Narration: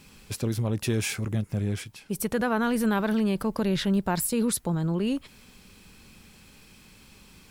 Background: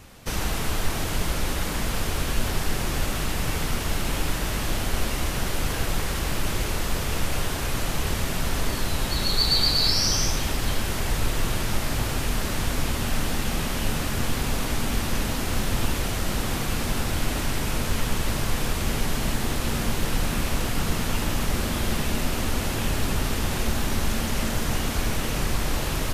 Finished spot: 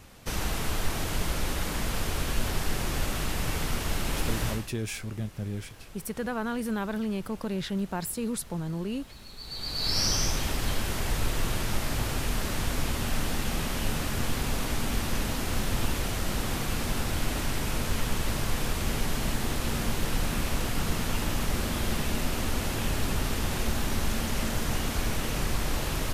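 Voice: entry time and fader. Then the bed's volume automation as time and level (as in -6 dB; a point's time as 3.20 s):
3.85 s, -6.0 dB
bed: 4.50 s -3.5 dB
4.73 s -23 dB
9.36 s -23 dB
9.99 s -3.5 dB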